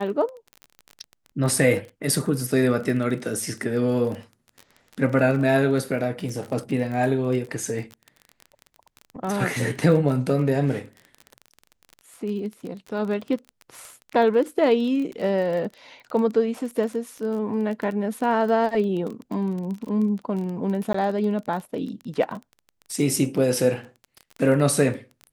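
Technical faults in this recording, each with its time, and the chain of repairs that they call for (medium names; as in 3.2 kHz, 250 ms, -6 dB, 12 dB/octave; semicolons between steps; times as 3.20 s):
crackle 22 per s -30 dBFS
20.93–20.94 s: dropout 14 ms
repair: de-click; interpolate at 20.93 s, 14 ms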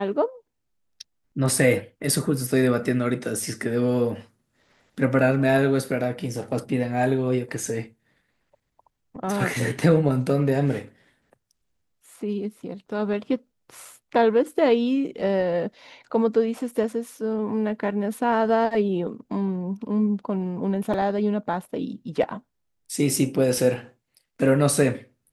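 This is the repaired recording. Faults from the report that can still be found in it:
nothing left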